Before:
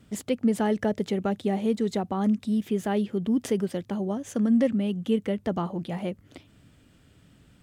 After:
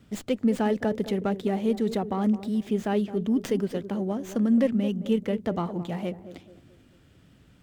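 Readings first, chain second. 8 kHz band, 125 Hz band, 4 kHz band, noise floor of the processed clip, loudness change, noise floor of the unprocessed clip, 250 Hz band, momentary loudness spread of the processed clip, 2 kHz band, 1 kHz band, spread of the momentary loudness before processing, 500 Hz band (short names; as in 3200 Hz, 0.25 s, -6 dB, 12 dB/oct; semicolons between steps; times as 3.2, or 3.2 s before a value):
n/a, 0.0 dB, -0.5 dB, -57 dBFS, 0.0 dB, -59 dBFS, 0.0 dB, 8 LU, 0.0 dB, 0.0 dB, 7 LU, +0.5 dB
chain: narrowing echo 0.216 s, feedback 44%, band-pass 360 Hz, level -11 dB; running maximum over 3 samples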